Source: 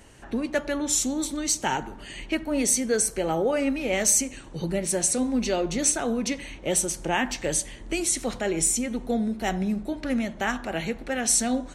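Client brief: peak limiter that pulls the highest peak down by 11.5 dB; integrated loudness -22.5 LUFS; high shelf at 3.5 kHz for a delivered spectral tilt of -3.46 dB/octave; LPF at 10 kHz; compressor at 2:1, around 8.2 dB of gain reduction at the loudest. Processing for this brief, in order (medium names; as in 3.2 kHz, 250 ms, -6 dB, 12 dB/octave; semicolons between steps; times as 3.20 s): low-pass 10 kHz; treble shelf 3.5 kHz +3.5 dB; compression 2:1, threshold -31 dBFS; trim +12.5 dB; peak limiter -14 dBFS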